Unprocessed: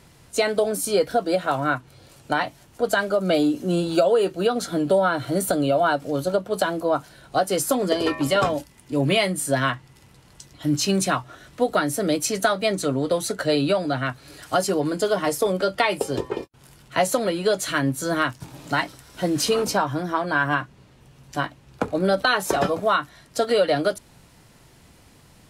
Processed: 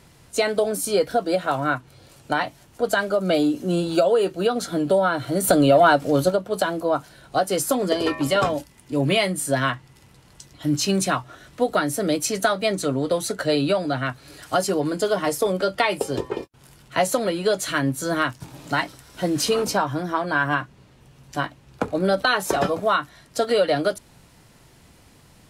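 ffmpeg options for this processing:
-filter_complex "[0:a]asplit=3[a][b][c];[a]afade=t=out:st=5.43:d=0.02[d];[b]acontrast=47,afade=t=in:st=5.43:d=0.02,afade=t=out:st=6.29:d=0.02[e];[c]afade=t=in:st=6.29:d=0.02[f];[d][e][f]amix=inputs=3:normalize=0"

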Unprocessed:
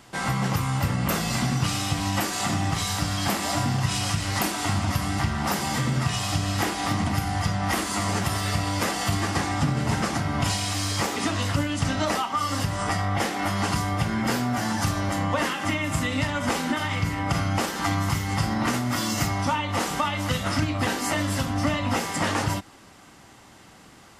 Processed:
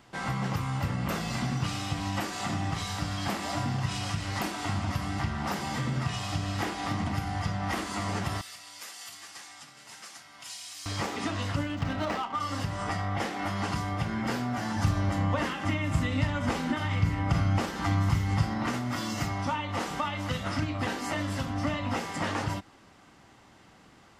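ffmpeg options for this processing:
-filter_complex "[0:a]asettb=1/sr,asplit=3[a][b][c];[a]atrim=end=8.414[d];[b]atrim=start=8.41:end=10.86,asetpts=PTS-STARTPTS,afade=t=in:d=0.004:c=qsin,afade=t=out:st=2.446:d=0.004:c=qsin,aderivative[e];[c]atrim=start=10.856[f];[d][e]acrossfade=d=0.004:c1=hsin:c2=qsin[g];[g][f]acrossfade=d=0.004:c1=qsin:c2=hsin,asettb=1/sr,asplit=3[h][i][j];[h]atrim=end=11.694[k];[i]atrim=start=11.69:end=12.4,asetpts=PTS-STARTPTS,afade=t=in:d=0.004:c=qsin,afade=t=out:st=0.706:d=0.004:c=qsin,adynamicsmooth=sensitivity=6:basefreq=1.4k[l];[j]atrim=start=12.396[m];[k][l]acrossfade=d=0.004:c1=hsin:c2=qsin[n];[n][m]acrossfade=d=0.004:c1=qsin:c2=hsin,asettb=1/sr,asplit=3[o][p][q];[o]atrim=end=14.764[r];[p]atrim=start=14.76:end=18.43,asetpts=PTS-STARTPTS,afade=t=in:d=0.004:c=qsin,afade=t=out:st=3.666:d=0.004:c=qsin,lowshelf=f=160:g=9.5[s];[q]atrim=start=18.426[t];[r][s]acrossfade=d=0.004:c1=hsin:c2=qsin[u];[u][t]acrossfade=d=0.004:c1=qsin:c2=hsin,equalizer=f=12k:t=o:w=1.4:g=-9.5,volume=-5.5dB"

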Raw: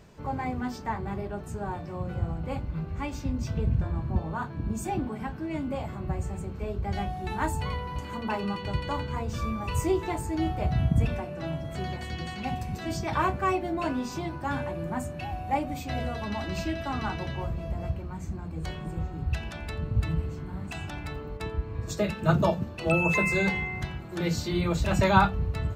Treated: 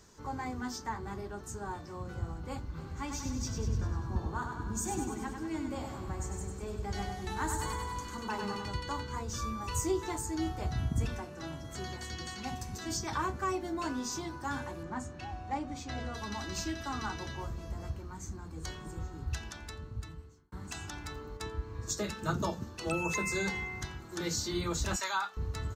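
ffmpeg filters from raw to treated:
-filter_complex "[0:a]asplit=3[a][b][c];[a]afade=t=out:st=2.77:d=0.02[d];[b]aecho=1:1:98|196|294|392|490|588|686|784:0.501|0.301|0.18|0.108|0.065|0.039|0.0234|0.014,afade=t=in:st=2.77:d=0.02,afade=t=out:st=8.68:d=0.02[e];[c]afade=t=in:st=8.68:d=0.02[f];[d][e][f]amix=inputs=3:normalize=0,asettb=1/sr,asplit=3[g][h][i];[g]atrim=end=14.834[j];[h]atrim=start=14.83:end=16.14,asetpts=PTS-STARTPTS,afade=t=in:d=0.004:c=qsin,afade=t=out:st=1.306:d=0.004:c=qsin,adynamicsmooth=sensitivity=3:basefreq=5k[k];[i]atrim=start=16.136[l];[j][k]acrossfade=d=0.004:c1=hsin:c2=qsin[m];[m][l]acrossfade=d=0.004:c1=qsin:c2=hsin,asettb=1/sr,asplit=3[n][o][p];[n]atrim=end=24.964[q];[o]atrim=start=24.96:end=25.37,asetpts=PTS-STARTPTS,afade=t=in:d=0.004:c=qsin,afade=t=out:st=0.406:d=0.004:c=qsin,highpass=950[r];[p]atrim=start=25.366[s];[q][r]acrossfade=d=0.004:c1=hsin:c2=qsin[t];[t][s]acrossfade=d=0.004:c1=qsin:c2=hsin,asplit=2[u][v];[u]atrim=end=20.52,asetpts=PTS-STARTPTS,afade=t=out:st=19.31:d=1.21[w];[v]atrim=start=20.52,asetpts=PTS-STARTPTS,afade=t=in:d=0.004:c=hsin[x];[w][x]concat=n=2:v=0:a=1,equalizer=f=160:t=o:w=0.67:g=-7,equalizer=f=630:t=o:w=0.67:g=-10,equalizer=f=2.5k:t=o:w=0.67:g=-9,equalizer=f=6.3k:t=o:w=0.67:g=9,acrossover=split=440[y][z];[z]acompressor=threshold=-32dB:ratio=2.5[aa];[y][aa]amix=inputs=2:normalize=0,lowshelf=f=330:g=-6.5"

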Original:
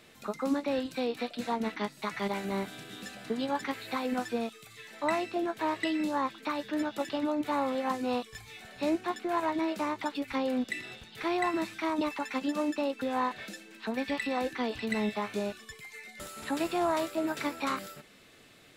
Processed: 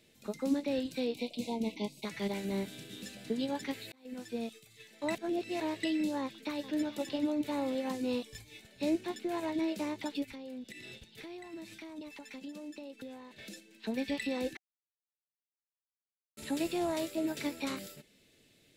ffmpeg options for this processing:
-filter_complex "[0:a]asettb=1/sr,asplit=3[a][b][c];[a]atrim=end=1.144[d];[b]atrim=start=1.14:end=2.05,asetpts=PTS-STARTPTS,afade=t=in:d=0.004:c=qsin,afade=t=out:st=0.906:d=0.004:c=qsin,asuperstop=centerf=1500:order=20:qfactor=1.5[e];[c]atrim=start=2.046[f];[d][e]acrossfade=d=0.004:c1=hsin:c2=qsin[g];[g][f]acrossfade=d=0.004:c1=qsin:c2=hsin,asplit=2[h][i];[i]afade=t=in:st=6.2:d=0.01,afade=t=out:st=6.89:d=0.01,aecho=0:1:430|860|1290|1720|2150:0.188365|0.103601|0.0569804|0.0313392|0.0172366[j];[h][j]amix=inputs=2:normalize=0,asplit=3[k][l][m];[k]afade=t=out:st=10.24:d=0.02[n];[l]acompressor=threshold=-40dB:ratio=6:attack=3.2:release=140:knee=1:detection=peak,afade=t=in:st=10.24:d=0.02,afade=t=out:st=13.65:d=0.02[o];[m]afade=t=in:st=13.65:d=0.02[p];[n][o][p]amix=inputs=3:normalize=0,asplit=6[q][r][s][t][u][v];[q]atrim=end=3.92,asetpts=PTS-STARTPTS,afade=t=out:st=3.916:d=0.004:c=hsin[w];[r]atrim=start=3.92:end=5.152,asetpts=PTS-STARTPTS,afade=t=in:d=0.66[x];[s]atrim=start=5.148:end=5.602,asetpts=PTS-STARTPTS,areverse[y];[t]atrim=start=5.598:end=14.57,asetpts=PTS-STARTPTS,afade=t=out:st=8.968:d=0.004:c=hsin[z];[u]atrim=start=14.57:end=16.37,asetpts=PTS-STARTPTS,volume=0[aa];[v]atrim=start=16.37,asetpts=PTS-STARTPTS,afade=t=in:d=0.004:c=hsin[ab];[w][x]concat=n=2:v=0:a=1[ac];[ac][y]acrossfade=d=0.004:c1=hsin:c2=hsin[ad];[z][aa][ab]concat=n=3:v=0:a=1[ae];[ad][ae]acrossfade=d=0.004:c1=hsin:c2=hsin,agate=range=-6dB:threshold=-47dB:ratio=16:detection=peak,equalizer=f=1.2k:t=o:w=1.1:g=-15,bandreject=f=740:w=12"

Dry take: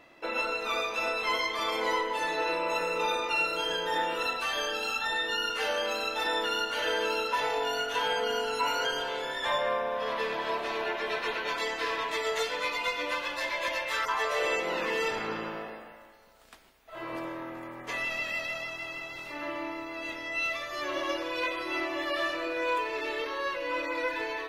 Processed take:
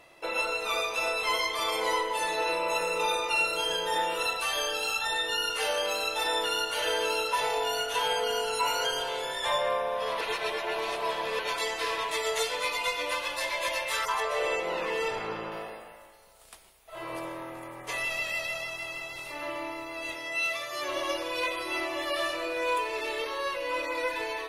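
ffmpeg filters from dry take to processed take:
-filter_complex "[0:a]asettb=1/sr,asplit=3[a][b][c];[a]atrim=end=14.204[d];[b]atrim=start=14.2:end=15.52,asetpts=PTS-STARTPTS,afade=t=in:d=0.004:c=qsin,afade=t=out:st=1.316:d=0.004:c=qsin,highshelf=f=4.2k:g=-11[e];[c]atrim=start=15.516[f];[d][e]acrossfade=d=0.004:c1=hsin:c2=qsin[g];[g][f]acrossfade=d=0.004:c1=qsin:c2=hsin,asettb=1/sr,asplit=3[h][i][j];[h]atrim=end=20.154[k];[i]atrim=start=20.15:end=20.89,asetpts=PTS-STARTPTS,afade=t=in:d=0.004:c=qsin,afade=t=out:st=0.736:d=0.004:c=qsin,highpass=f=120:w=0.5412,highpass=f=120:w=1.3066[l];[j]atrim=start=20.886[m];[k][l]acrossfade=d=0.004:c1=hsin:c2=qsin[n];[n][m]acrossfade=d=0.004:c1=qsin:c2=hsin,asplit=3[o][p][q];[o]atrim=end=10.212[r];[p]atrim=start=10.208:end=11.392,asetpts=PTS-STARTPTS,areverse[s];[q]atrim=start=11.388[t];[r][s]acrossfade=d=0.004:c1=hsin:c2=hsin[u];[u][t]acrossfade=d=0.004:c1=hsin:c2=hsin,equalizer=f=250:t=o:w=0.67:g=-11,equalizer=f=1.6k:t=o:w=0.67:g=-5,equalizer=f=10k:t=o:w=0.67:g=12,acontrast=43,volume=-3.5dB"

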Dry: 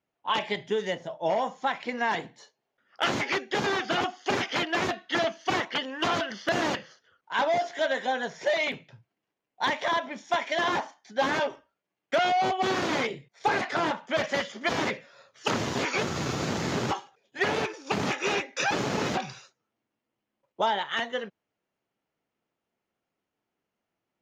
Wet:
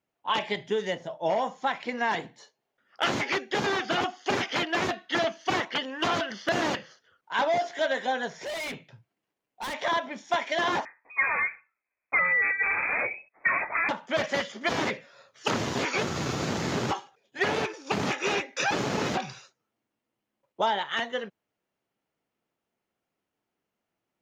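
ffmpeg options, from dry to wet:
-filter_complex "[0:a]asettb=1/sr,asplit=3[a][b][c];[a]atrim=end=8.284[d];[b]atrim=start=8.28:end=9.74,asetpts=PTS-STARTPTS,afade=t=in:d=0.004:c=qsin,afade=t=out:st=1.456:d=0.004:c=qsin,volume=32dB,asoftclip=hard,volume=-32dB[e];[c]atrim=start=9.736[f];[d][e]acrossfade=d=0.004:c1=hsin:c2=qsin[g];[g][f]acrossfade=d=0.004:c1=qsin:c2=hsin,asettb=1/sr,asplit=3[h][i][j];[h]atrim=end=10.854[k];[i]atrim=start=10.85:end=13.89,asetpts=PTS-STARTPTS,afade=t=in:d=0.004:c=qsin,afade=t=out:st=3.036:d=0.004:c=qsin,lowpass=f=2.3k:t=q:w=0.5098,lowpass=f=2.3k:t=q:w=0.6013,lowpass=f=2.3k:t=q:w=0.9,lowpass=f=2.3k:t=q:w=2.563,afreqshift=-2700[l];[j]atrim=start=13.886[m];[k][l]acrossfade=d=0.004:c1=hsin:c2=qsin[n];[n][m]acrossfade=d=0.004:c1=qsin:c2=hsin"

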